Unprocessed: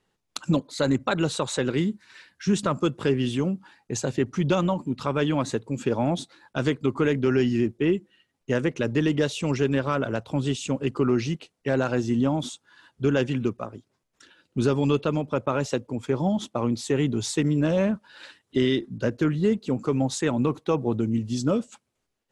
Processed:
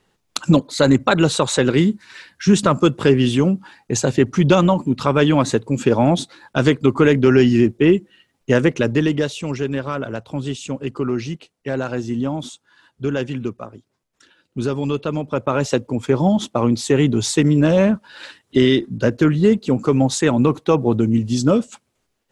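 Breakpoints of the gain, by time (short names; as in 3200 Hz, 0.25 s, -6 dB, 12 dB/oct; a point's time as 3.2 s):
8.7 s +9 dB
9.46 s +0.5 dB
14.94 s +0.5 dB
15.77 s +8 dB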